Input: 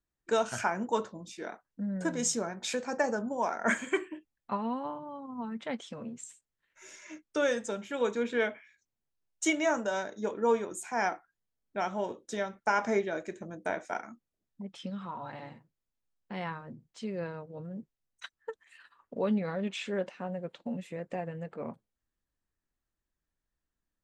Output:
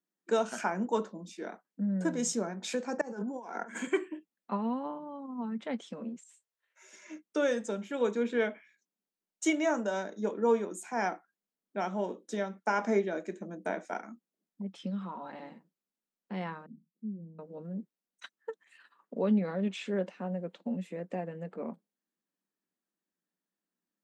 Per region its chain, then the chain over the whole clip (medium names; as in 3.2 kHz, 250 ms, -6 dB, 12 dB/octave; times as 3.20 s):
3.01–3.87 s: high-pass 200 Hz + compressor with a negative ratio -39 dBFS + comb of notches 610 Hz
6.16–6.93 s: high-pass 470 Hz 24 dB/octave + doubling 26 ms -12 dB + compression 5:1, threshold -50 dBFS
16.66–17.39 s: four-pole ladder low-pass 270 Hz, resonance 35% + doubling 19 ms -11 dB
whole clip: elliptic high-pass 180 Hz; bass shelf 350 Hz +8 dB; trim -2.5 dB